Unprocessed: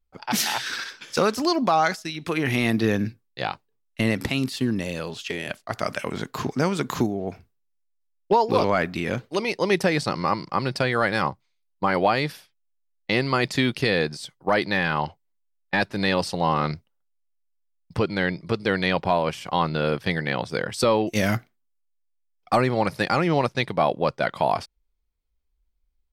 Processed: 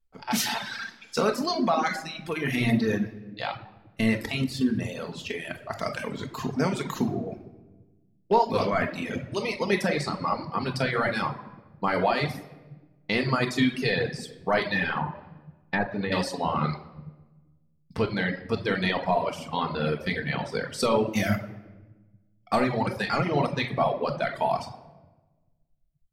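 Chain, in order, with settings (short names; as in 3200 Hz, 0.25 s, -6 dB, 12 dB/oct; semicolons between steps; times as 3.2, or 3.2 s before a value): shoebox room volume 880 m³, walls mixed, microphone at 1.6 m; 14.97–16.12 treble ducked by the level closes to 1500 Hz, closed at -17 dBFS; reverb removal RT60 1.6 s; gain -4.5 dB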